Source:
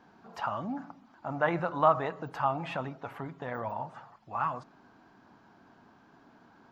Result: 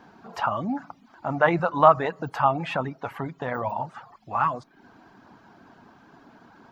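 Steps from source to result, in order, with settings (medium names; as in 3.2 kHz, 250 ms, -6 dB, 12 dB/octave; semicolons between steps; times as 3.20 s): reverb removal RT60 0.52 s; trim +8 dB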